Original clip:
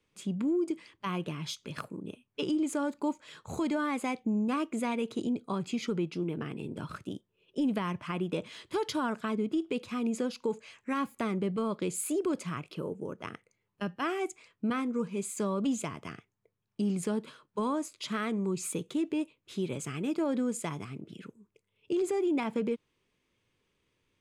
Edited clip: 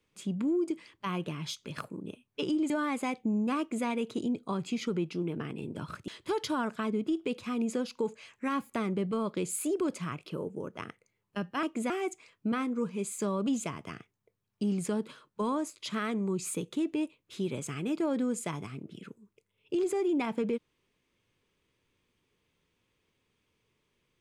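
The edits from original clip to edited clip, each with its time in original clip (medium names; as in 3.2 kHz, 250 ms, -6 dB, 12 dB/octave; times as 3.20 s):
2.70–3.71 s: delete
4.60–4.87 s: copy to 14.08 s
7.09–8.53 s: delete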